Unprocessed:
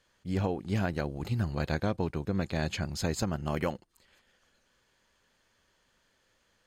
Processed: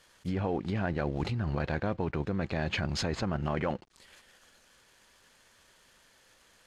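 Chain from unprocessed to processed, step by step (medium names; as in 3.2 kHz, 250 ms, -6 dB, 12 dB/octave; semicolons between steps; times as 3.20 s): CVSD coder 64 kbps; low-pass that closes with the level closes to 2.5 kHz, closed at -28.5 dBFS; in parallel at +1 dB: compressor with a negative ratio -34 dBFS, ratio -0.5; on the sum: bass shelf 440 Hz -4 dB; trim -1 dB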